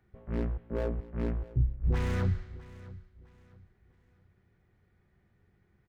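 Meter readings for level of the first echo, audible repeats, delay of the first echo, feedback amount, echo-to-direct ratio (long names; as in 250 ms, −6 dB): −19.0 dB, 2, 656 ms, 31%, −18.5 dB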